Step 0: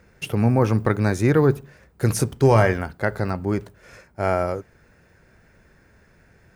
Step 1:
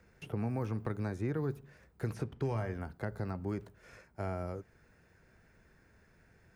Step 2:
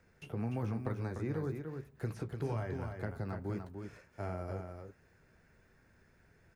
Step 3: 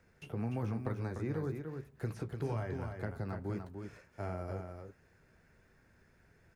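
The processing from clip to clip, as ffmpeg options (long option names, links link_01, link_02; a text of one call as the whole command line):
ffmpeg -i in.wav -filter_complex "[0:a]bandreject=frequency=560:width=18,acrossover=split=290|1500|3400[link_01][link_02][link_03][link_04];[link_01]acompressor=threshold=-26dB:ratio=4[link_05];[link_02]acompressor=threshold=-31dB:ratio=4[link_06];[link_03]acompressor=threshold=-47dB:ratio=4[link_07];[link_04]acompressor=threshold=-57dB:ratio=4[link_08];[link_05][link_06][link_07][link_08]amix=inputs=4:normalize=0,volume=-9dB" out.wav
ffmpeg -i in.wav -af "flanger=delay=7:depth=7:regen=-54:speed=1.9:shape=sinusoidal,aecho=1:1:296:0.501,volume=1.5dB" out.wav
ffmpeg -i in.wav -ar 48000 -c:a libopus -b:a 256k out.opus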